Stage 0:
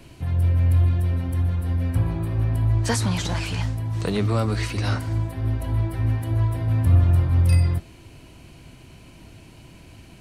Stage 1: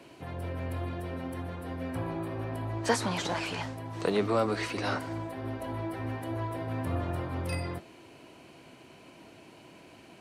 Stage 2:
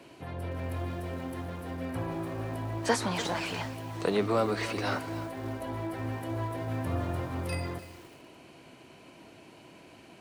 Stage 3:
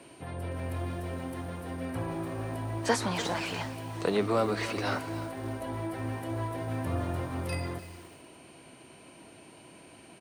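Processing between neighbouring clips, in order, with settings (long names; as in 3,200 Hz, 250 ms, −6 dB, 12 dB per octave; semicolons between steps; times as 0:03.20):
high-pass filter 430 Hz 12 dB per octave; spectral tilt −2.5 dB per octave
feedback echo at a low word length 297 ms, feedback 35%, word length 7 bits, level −13.5 dB
single-tap delay 355 ms −21.5 dB; steady tone 8,800 Hz −60 dBFS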